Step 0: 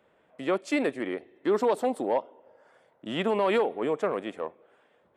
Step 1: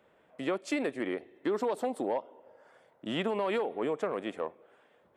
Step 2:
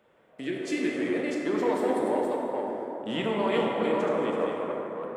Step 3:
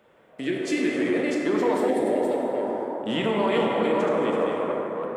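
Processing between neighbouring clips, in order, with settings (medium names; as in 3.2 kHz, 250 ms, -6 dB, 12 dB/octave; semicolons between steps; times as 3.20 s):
compression 4:1, threshold -28 dBFS, peak gain reduction 7.5 dB
chunks repeated in reverse 337 ms, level -4 dB; spectral replace 0.43–1.07 s, 440–1500 Hz both; plate-style reverb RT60 3.6 s, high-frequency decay 0.4×, DRR -2 dB
spectral replace 1.91–2.77 s, 770–1600 Hz after; in parallel at +1 dB: peak limiter -21 dBFS, peak gain reduction 7.5 dB; on the sum: trim -1.5 dB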